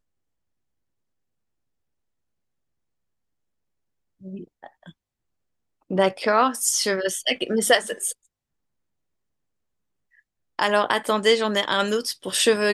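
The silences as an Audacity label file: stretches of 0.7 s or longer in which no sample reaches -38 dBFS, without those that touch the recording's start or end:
4.900000	5.910000	silence
8.130000	10.590000	silence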